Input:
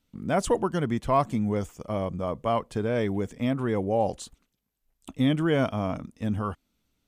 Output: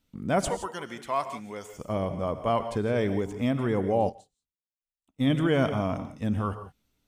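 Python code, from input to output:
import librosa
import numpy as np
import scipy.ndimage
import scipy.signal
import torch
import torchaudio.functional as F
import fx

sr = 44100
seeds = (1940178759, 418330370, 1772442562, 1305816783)

y = fx.highpass(x, sr, hz=1300.0, slope=6, at=(0.48, 1.73))
y = fx.rev_gated(y, sr, seeds[0], gate_ms=190, shape='rising', drr_db=9.5)
y = fx.upward_expand(y, sr, threshold_db=-41.0, expansion=2.5, at=(4.09, 5.3))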